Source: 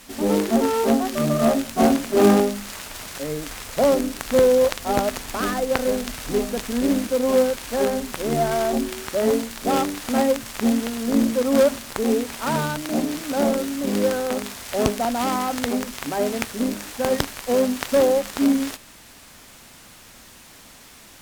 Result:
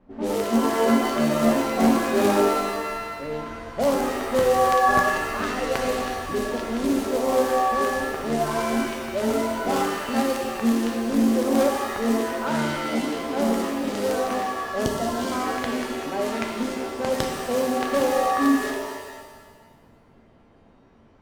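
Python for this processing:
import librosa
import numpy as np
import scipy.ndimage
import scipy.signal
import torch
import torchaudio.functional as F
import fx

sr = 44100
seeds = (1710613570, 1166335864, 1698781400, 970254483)

y = fx.env_lowpass(x, sr, base_hz=580.0, full_db=-17.0)
y = fx.spec_erase(y, sr, start_s=14.85, length_s=0.47, low_hz=730.0, high_hz=2800.0)
y = fx.rev_shimmer(y, sr, seeds[0], rt60_s=1.3, semitones=7, shimmer_db=-2, drr_db=3.0)
y = y * 10.0 ** (-5.0 / 20.0)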